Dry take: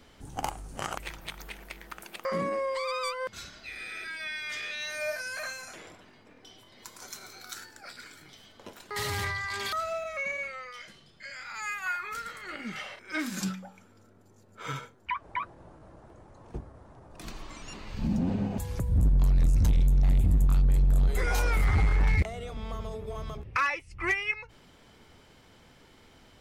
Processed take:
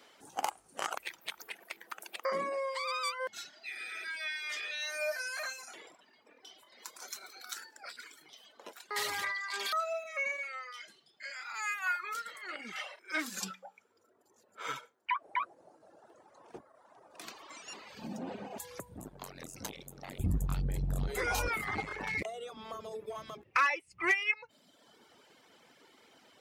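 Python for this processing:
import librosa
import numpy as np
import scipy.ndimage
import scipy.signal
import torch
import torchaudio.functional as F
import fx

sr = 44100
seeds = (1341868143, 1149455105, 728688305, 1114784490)

y = fx.dereverb_blind(x, sr, rt60_s=1.2)
y = fx.highpass(y, sr, hz=fx.steps((0.0, 430.0), (20.19, 71.0), (21.48, 290.0)), slope=12)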